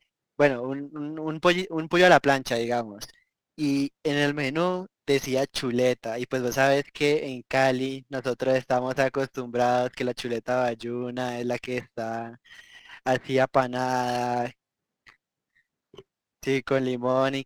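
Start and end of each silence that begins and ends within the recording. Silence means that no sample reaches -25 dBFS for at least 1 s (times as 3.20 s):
14.47–16.47 s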